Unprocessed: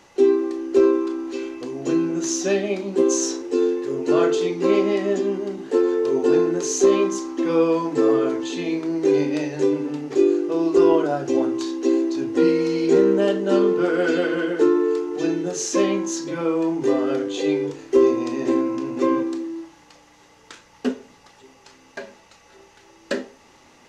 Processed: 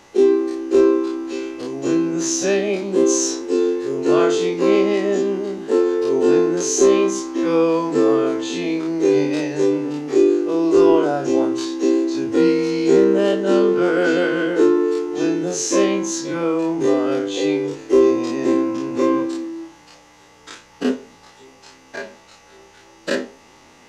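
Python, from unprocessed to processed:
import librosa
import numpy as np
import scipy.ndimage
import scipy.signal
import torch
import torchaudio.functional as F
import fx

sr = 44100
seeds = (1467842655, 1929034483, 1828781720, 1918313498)

y = fx.spec_dilate(x, sr, span_ms=60)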